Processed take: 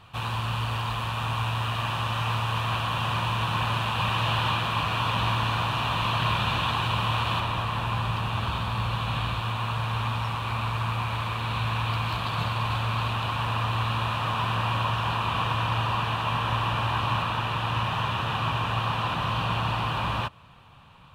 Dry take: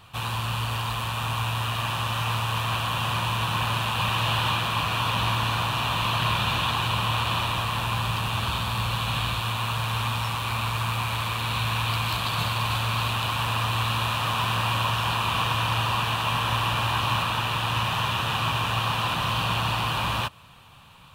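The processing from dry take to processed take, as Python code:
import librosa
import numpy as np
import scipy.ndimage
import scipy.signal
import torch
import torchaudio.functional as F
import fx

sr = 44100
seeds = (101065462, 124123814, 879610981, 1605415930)

y = fx.lowpass(x, sr, hz=fx.steps((0.0, 3400.0), (7.4, 2000.0)), slope=6)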